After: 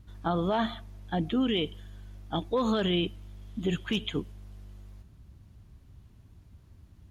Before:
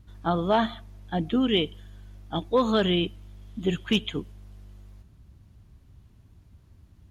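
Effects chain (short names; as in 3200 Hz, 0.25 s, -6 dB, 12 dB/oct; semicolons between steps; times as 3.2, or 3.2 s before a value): limiter -19.5 dBFS, peak gain reduction 7.5 dB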